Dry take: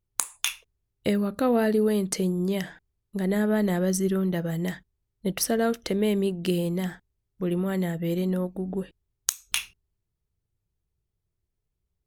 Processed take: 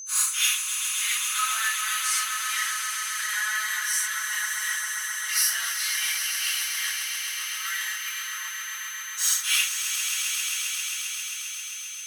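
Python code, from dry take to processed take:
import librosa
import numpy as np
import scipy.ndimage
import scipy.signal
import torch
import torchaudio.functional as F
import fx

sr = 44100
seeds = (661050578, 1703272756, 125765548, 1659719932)

p1 = fx.phase_scramble(x, sr, seeds[0], window_ms=200)
p2 = scipy.signal.sosfilt(scipy.signal.butter(8, 1200.0, 'highpass', fs=sr, output='sos'), p1)
p3 = p2 + 0.89 * np.pad(p2, (int(4.7 * sr / 1000.0), 0))[:len(p2)]
p4 = fx.level_steps(p3, sr, step_db=21)
p5 = p3 + (p4 * 10.0 ** (-2.0 / 20.0))
p6 = p5 + 10.0 ** (-39.0 / 20.0) * np.sin(2.0 * np.pi * 6200.0 * np.arange(len(p5)) / sr)
p7 = p6 + fx.echo_swell(p6, sr, ms=133, loudest=5, wet_db=-9.0, dry=0)
y = p7 * 10.0 ** (3.0 / 20.0)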